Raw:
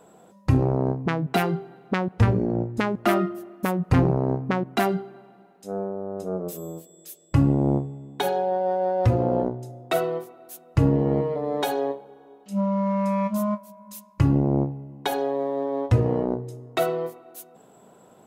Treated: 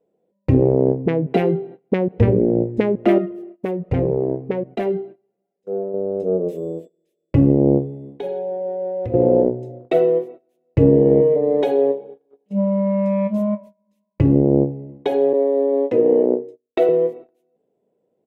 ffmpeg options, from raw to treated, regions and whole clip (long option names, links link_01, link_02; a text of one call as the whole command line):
ffmpeg -i in.wav -filter_complex "[0:a]asettb=1/sr,asplit=3[link_01][link_02][link_03];[link_01]atrim=end=3.184[link_04];[link_02]atrim=start=3.18:end=5.94,asetpts=PTS-STARTPTS,afade=type=in:duration=0.004:curve=qsin,afade=type=out:start_time=2.756:duration=0.004:curve=qsin,equalizer=frequency=280:width=5.1:gain=-4.5,flanger=delay=1.3:depth=1.9:regen=54:speed=1.3:shape=triangular[link_05];[link_03]atrim=start=5.936[link_06];[link_04][link_05]acrossfade=duration=0.004:curve1=hsin:curve2=qsin[link_07];[link_07][link_06]acrossfade=duration=0.004:curve1=qsin:curve2=hsin,asettb=1/sr,asplit=3[link_08][link_09][link_10];[link_08]atrim=end=8.104[link_11];[link_09]atrim=start=8.1:end=9.14,asetpts=PTS-STARTPTS,afade=type=in:duration=0.004:curve=qsin,afade=type=out:start_time=1.036:duration=0.004:curve=qsin,bandreject=frequency=123.8:width_type=h:width=4,bandreject=frequency=247.6:width_type=h:width=4,bandreject=frequency=371.4:width_type=h:width=4,bandreject=frequency=495.2:width_type=h:width=4,bandreject=frequency=619:width_type=h:width=4,bandreject=frequency=742.8:width_type=h:width=4,bandreject=frequency=866.6:width_type=h:width=4,bandreject=frequency=990.4:width_type=h:width=4,bandreject=frequency=1114.2:width_type=h:width=4,bandreject=frequency=1238:width_type=h:width=4,bandreject=frequency=1361.8:width_type=h:width=4,bandreject=frequency=1485.6:width_type=h:width=4,bandreject=frequency=1609.4:width_type=h:width=4,bandreject=frequency=1733.2:width_type=h:width=4,bandreject=frequency=1857:width_type=h:width=4,bandreject=frequency=1980.8:width_type=h:width=4,bandreject=frequency=2104.6:width_type=h:width=4,bandreject=frequency=2228.4:width_type=h:width=4,bandreject=frequency=2352.2:width_type=h:width=4,bandreject=frequency=2476:width_type=h:width=4,bandreject=frequency=2599.8:width_type=h:width=4,bandreject=frequency=2723.6:width_type=h:width=4,bandreject=frequency=2847.4:width_type=h:width=4,bandreject=frequency=2971.2:width_type=h:width=4,bandreject=frequency=3095:width_type=h:width=4,bandreject=frequency=3218.8:width_type=h:width=4,bandreject=frequency=3342.6:width_type=h:width=4,bandreject=frequency=3466.4:width_type=h:width=4,bandreject=frequency=3590.2:width_type=h:width=4,bandreject=frequency=3714:width_type=h:width=4,bandreject=frequency=3837.8:width_type=h:width=4,bandreject=frequency=3961.6:width_type=h:width=4,bandreject=frequency=4085.4:width_type=h:width=4,bandreject=frequency=4209.2:width_type=h:width=4,bandreject=frequency=4333:width_type=h:width=4,acompressor=threshold=-37dB:ratio=2:attack=3.2:release=140:knee=1:detection=peak[link_12];[link_10]atrim=start=9.136[link_13];[link_11][link_12]acrossfade=duration=0.004:curve1=hsin:curve2=qsin[link_14];[link_14][link_13]acrossfade=duration=0.004:curve1=qsin:curve2=hsin,asettb=1/sr,asplit=3[link_15][link_16][link_17];[link_15]atrim=end=15.334[link_18];[link_16]atrim=start=15.33:end=16.89,asetpts=PTS-STARTPTS,afade=type=in:duration=0.004:curve=qsin,afade=type=out:start_time=1.556:duration=0.004:curve=qsin,agate=range=-33dB:threshold=-30dB:ratio=3:release=100:detection=peak,highpass=frequency=230:width=0.5412,highpass=frequency=230:width=1.3066[link_19];[link_17]atrim=start=16.886[link_20];[link_18][link_19]acrossfade=duration=0.004:curve1=hsin:curve2=qsin[link_21];[link_21][link_20]acrossfade=duration=0.004:curve1=qsin:curve2=hsin,firequalizer=gain_entry='entry(110,0);entry(480,10);entry(720,-4);entry(1300,-18);entry(2000,-9);entry(4500,-26)':delay=0.05:min_phase=1,agate=range=-24dB:threshold=-38dB:ratio=16:detection=peak,equalizer=frequency=4200:width_type=o:width=2.5:gain=12.5,volume=2dB" out.wav